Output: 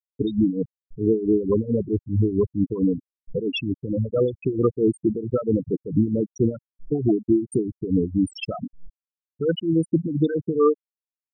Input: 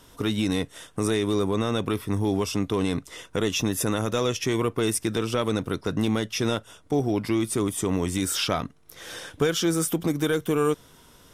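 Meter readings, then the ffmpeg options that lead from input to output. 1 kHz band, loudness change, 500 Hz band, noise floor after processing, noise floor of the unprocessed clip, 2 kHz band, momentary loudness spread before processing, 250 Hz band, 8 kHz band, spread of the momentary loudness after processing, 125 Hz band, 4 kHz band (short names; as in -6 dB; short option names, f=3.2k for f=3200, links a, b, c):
-6.0 dB, +2.0 dB, +3.0 dB, under -85 dBFS, -54 dBFS, -8.5 dB, 6 LU, +3.5 dB, under -15 dB, 8 LU, +2.5 dB, -8.5 dB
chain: -af "aeval=exprs='val(0)+0.5*0.0355*sgn(val(0))':c=same,afftfilt=real='re*gte(hypot(re,im),0.316)':imag='im*gte(hypot(re,im),0.316)':win_size=1024:overlap=0.75,tremolo=f=4.5:d=0.74,volume=6.5dB"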